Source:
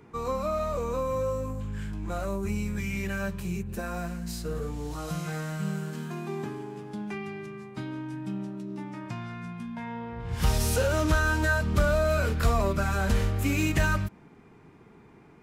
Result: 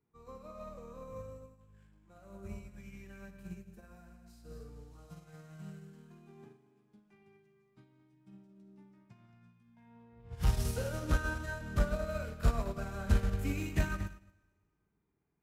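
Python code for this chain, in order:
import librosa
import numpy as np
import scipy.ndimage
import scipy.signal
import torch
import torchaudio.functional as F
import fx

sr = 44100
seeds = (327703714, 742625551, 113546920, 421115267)

p1 = fx.low_shelf(x, sr, hz=190.0, db=6.0)
p2 = 10.0 ** (-11.5 / 20.0) * np.tanh(p1 / 10.0 ** (-11.5 / 20.0))
p3 = p2 + fx.echo_single(p2, sr, ms=225, db=-11.0, dry=0)
p4 = fx.rev_schroeder(p3, sr, rt60_s=1.8, comb_ms=38, drr_db=5.5)
p5 = fx.upward_expand(p4, sr, threshold_db=-34.0, expansion=2.5)
y = p5 * 10.0 ** (-4.5 / 20.0)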